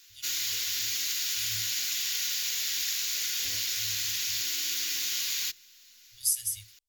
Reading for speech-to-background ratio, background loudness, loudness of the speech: -3.0 dB, -28.0 LUFS, -31.0 LUFS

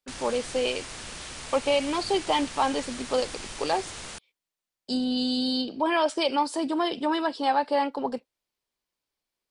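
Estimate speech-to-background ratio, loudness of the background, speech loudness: 11.0 dB, -38.0 LUFS, -27.0 LUFS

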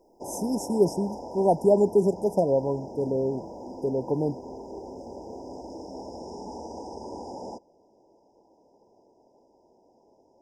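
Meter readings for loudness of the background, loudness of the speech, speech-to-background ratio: -40.0 LUFS, -25.5 LUFS, 14.5 dB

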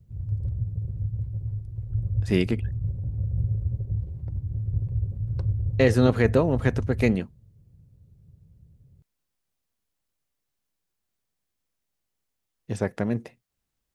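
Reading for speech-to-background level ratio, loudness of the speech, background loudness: 6.0 dB, -24.5 LUFS, -30.5 LUFS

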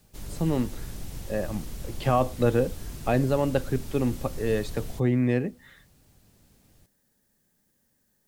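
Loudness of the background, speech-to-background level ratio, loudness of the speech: -40.5 LUFS, 13.0 dB, -27.5 LUFS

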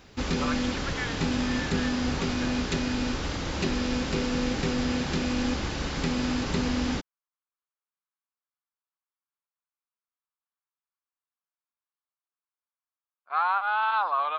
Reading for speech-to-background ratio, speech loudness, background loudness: -1.0 dB, -29.5 LUFS, -28.5 LUFS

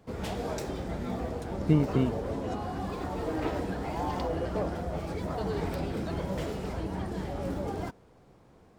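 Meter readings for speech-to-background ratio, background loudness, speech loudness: 5.5 dB, -34.0 LUFS, -28.5 LUFS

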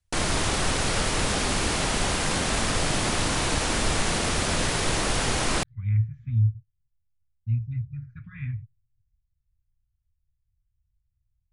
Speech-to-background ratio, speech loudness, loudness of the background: -4.0 dB, -29.0 LUFS, -25.0 LUFS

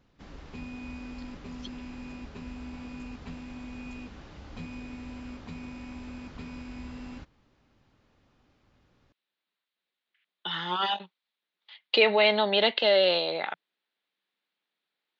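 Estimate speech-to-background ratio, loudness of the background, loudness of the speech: 18.0 dB, -42.5 LUFS, -24.5 LUFS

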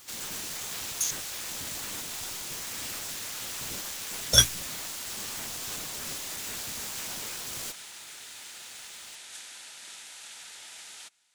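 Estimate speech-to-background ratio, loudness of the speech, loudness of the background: 12.5 dB, -30.5 LUFS, -43.0 LUFS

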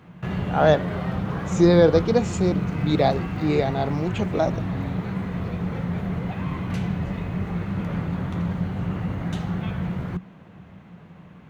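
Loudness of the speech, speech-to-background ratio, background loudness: -22.0 LUFS, 6.0 dB, -28.0 LUFS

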